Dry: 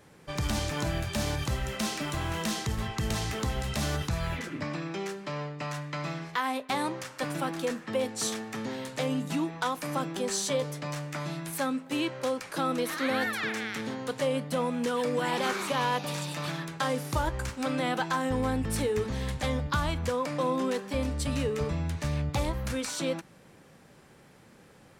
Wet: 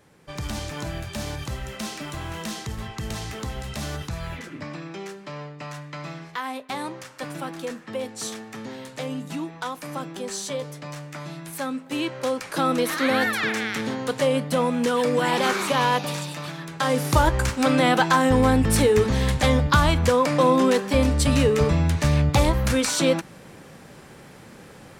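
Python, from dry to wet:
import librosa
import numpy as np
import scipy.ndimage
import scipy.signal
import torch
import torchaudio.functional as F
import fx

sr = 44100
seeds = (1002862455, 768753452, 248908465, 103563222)

y = fx.gain(x, sr, db=fx.line((11.36, -1.0), (12.68, 7.0), (15.96, 7.0), (16.55, -1.0), (17.05, 10.5)))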